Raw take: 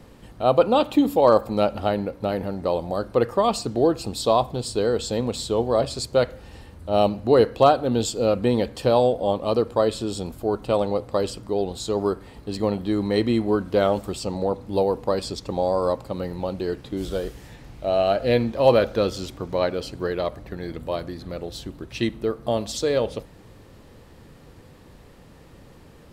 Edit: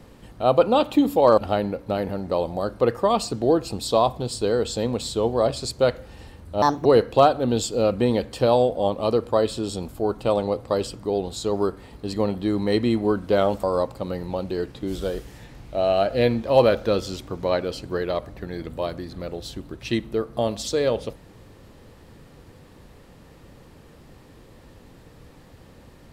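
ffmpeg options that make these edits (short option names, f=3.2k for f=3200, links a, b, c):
-filter_complex "[0:a]asplit=5[a][b][c][d][e];[a]atrim=end=1.382[f];[b]atrim=start=1.718:end=6.964[g];[c]atrim=start=6.96:end=7.29,asetpts=PTS-STARTPTS,asetrate=62181,aresample=44100,atrim=end_sample=10321,asetpts=PTS-STARTPTS[h];[d]atrim=start=7.286:end=14.072[i];[e]atrim=start=15.728[j];[f][g]acrossfade=d=0.004:c1=hsin:c2=hsin[k];[k][h]acrossfade=d=0.004:c1=hsin:c2=hsin[l];[l][i]acrossfade=d=0.004:c1=hsin:c2=hsin[m];[m][j]acrossfade=d=0.004:c1=hsin:c2=hsin"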